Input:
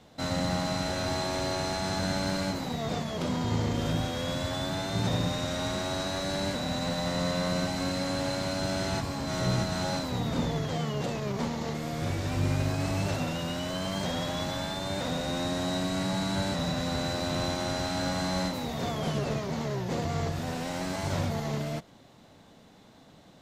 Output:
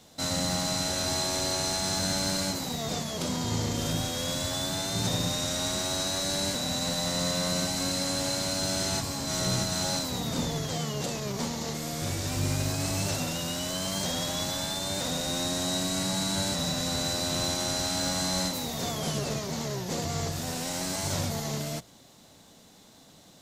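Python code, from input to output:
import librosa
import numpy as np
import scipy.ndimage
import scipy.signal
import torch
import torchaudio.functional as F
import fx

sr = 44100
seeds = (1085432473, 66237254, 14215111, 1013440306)

y = fx.bass_treble(x, sr, bass_db=0, treble_db=14)
y = fx.hum_notches(y, sr, base_hz=60, count=2)
y = y * 10.0 ** (-1.5 / 20.0)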